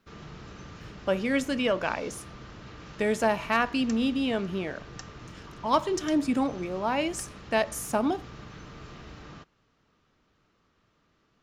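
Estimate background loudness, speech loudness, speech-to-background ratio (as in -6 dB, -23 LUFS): -45.0 LUFS, -28.5 LUFS, 16.5 dB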